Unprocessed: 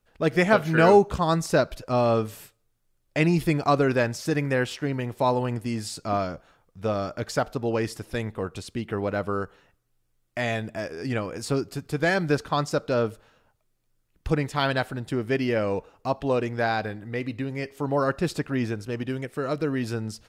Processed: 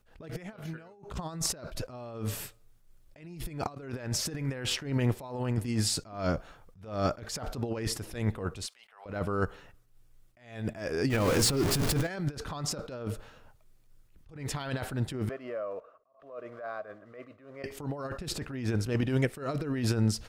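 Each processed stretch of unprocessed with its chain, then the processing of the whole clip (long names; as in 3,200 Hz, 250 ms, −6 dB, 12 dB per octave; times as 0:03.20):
0:08.66–0:09.06: inverse Chebyshev high-pass filter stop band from 340 Hz + downward compressor 2.5 to 1, threshold −46 dBFS
0:11.10–0:12.08: converter with a step at zero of −29.5 dBFS + mains-hum notches 60/120/180/240/300/360/420/480 Hz + downward compressor 4 to 1, threshold −25 dBFS
0:15.29–0:17.64: one scale factor per block 5 bits + pair of resonant band-passes 850 Hz, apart 0.88 octaves + downward compressor 2.5 to 1, threshold −42 dBFS
whole clip: low-shelf EQ 71 Hz +9.5 dB; compressor whose output falls as the input rises −29 dBFS, ratio −0.5; level that may rise only so fast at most 110 dB per second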